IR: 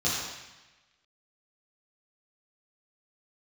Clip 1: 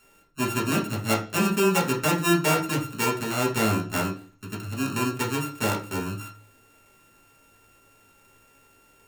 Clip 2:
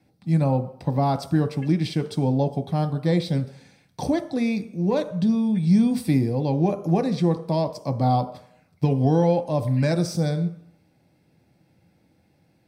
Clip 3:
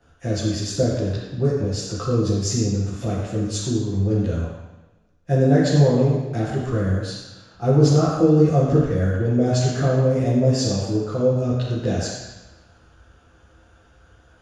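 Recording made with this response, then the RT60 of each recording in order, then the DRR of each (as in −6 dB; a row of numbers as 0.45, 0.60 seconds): 3; 0.40, 0.65, 1.1 seconds; −2.5, 7.5, −9.5 decibels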